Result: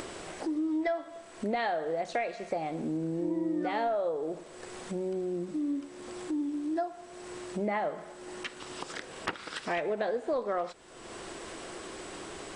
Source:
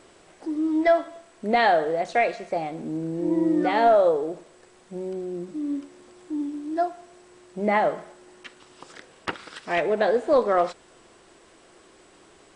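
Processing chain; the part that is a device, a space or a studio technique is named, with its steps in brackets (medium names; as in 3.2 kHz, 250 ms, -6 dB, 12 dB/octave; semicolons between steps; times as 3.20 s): upward and downward compression (upward compressor, threshold -31 dBFS; compression 5:1, threshold -29 dBFS, peak gain reduction 13.5 dB)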